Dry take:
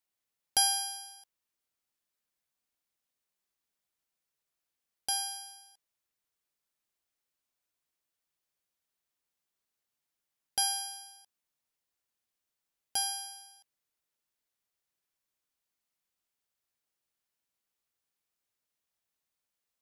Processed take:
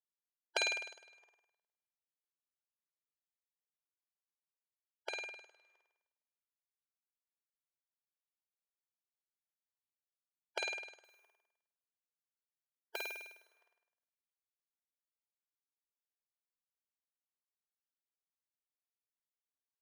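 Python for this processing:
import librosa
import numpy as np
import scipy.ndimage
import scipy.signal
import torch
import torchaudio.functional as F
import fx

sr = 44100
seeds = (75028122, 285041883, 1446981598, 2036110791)

p1 = fx.spec_gate(x, sr, threshold_db=-20, keep='weak')
p2 = fx.env_lowpass(p1, sr, base_hz=1600.0, full_db=-32.0)
p3 = fx.sample_hold(p2, sr, seeds[0], rate_hz=16000.0, jitter_pct=0, at=(11.04, 13.18))
p4 = fx.brickwall_highpass(p3, sr, low_hz=350.0)
p5 = p4 + fx.room_flutter(p4, sr, wall_m=8.8, rt60_s=0.89, dry=0)
y = p5 * 10.0 ** (13.0 / 20.0)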